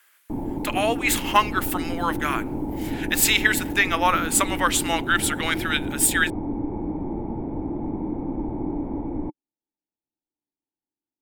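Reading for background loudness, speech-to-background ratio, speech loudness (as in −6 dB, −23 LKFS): −30.0 LKFS, 8.0 dB, −22.0 LKFS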